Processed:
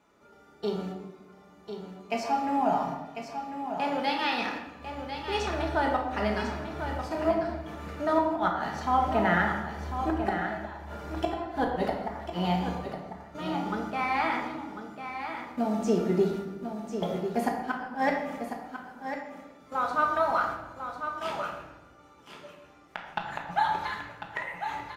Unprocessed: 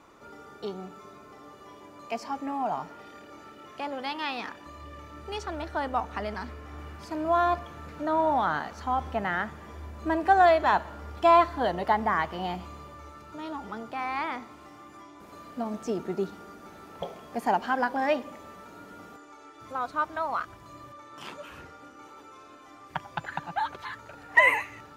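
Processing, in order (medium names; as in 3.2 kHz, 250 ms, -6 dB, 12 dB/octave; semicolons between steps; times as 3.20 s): band-stop 1.1 kHz, Q 9.9; gate -43 dBFS, range -12 dB; high-pass 42 Hz; inverted gate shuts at -17 dBFS, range -25 dB; on a send: delay 1047 ms -8.5 dB; on the sum: simulated room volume 470 m³, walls mixed, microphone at 1.4 m; trim +1.5 dB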